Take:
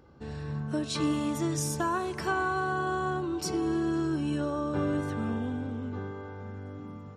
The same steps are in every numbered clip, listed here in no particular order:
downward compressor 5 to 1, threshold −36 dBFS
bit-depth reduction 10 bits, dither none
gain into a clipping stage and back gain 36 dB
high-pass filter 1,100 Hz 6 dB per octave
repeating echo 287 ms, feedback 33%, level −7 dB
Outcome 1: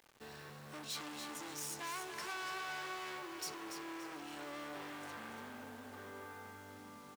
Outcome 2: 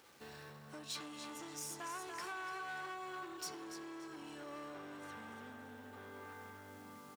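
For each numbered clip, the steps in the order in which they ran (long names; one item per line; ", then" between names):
gain into a clipping stage and back, then repeating echo, then downward compressor, then high-pass filter, then bit-depth reduction
repeating echo, then bit-depth reduction, then downward compressor, then gain into a clipping stage and back, then high-pass filter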